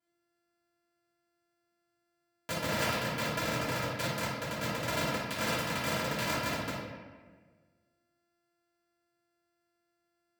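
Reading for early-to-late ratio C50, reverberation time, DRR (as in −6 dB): −1.0 dB, 1.5 s, −14.0 dB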